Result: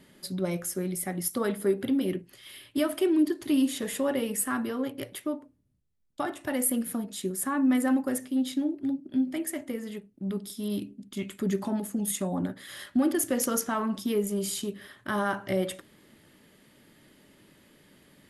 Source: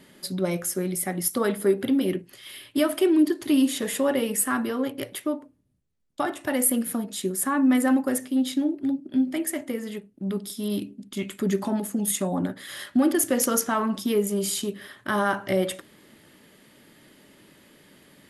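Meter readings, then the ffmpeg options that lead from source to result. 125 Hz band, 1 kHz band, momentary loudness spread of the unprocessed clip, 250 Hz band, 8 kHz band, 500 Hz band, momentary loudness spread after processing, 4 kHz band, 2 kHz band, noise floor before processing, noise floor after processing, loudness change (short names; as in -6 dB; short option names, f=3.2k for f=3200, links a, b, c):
-3.0 dB, -5.0 dB, 11 LU, -3.5 dB, -5.0 dB, -4.5 dB, 11 LU, -5.0 dB, -5.0 dB, -56 dBFS, -60 dBFS, -4.0 dB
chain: -af "lowshelf=f=130:g=6.5,volume=-5dB"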